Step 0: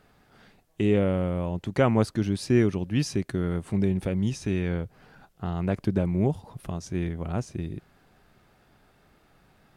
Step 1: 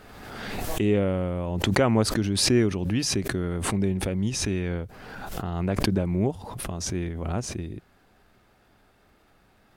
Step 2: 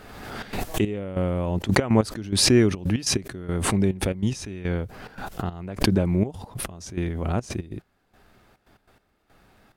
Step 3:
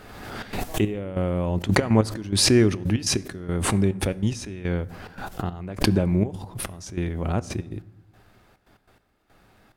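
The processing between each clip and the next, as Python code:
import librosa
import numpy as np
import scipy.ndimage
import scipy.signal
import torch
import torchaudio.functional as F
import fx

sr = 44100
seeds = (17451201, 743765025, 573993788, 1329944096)

y1 = fx.peak_eq(x, sr, hz=150.0, db=-9.5, octaves=0.27)
y1 = fx.pre_swell(y1, sr, db_per_s=33.0)
y2 = fx.step_gate(y1, sr, bpm=142, pattern='xxxx.x.x...', floor_db=-12.0, edge_ms=4.5)
y2 = y2 * 10.0 ** (3.5 / 20.0)
y3 = fx.rev_fdn(y2, sr, rt60_s=1.0, lf_ratio=1.4, hf_ratio=0.55, size_ms=56.0, drr_db=16.5)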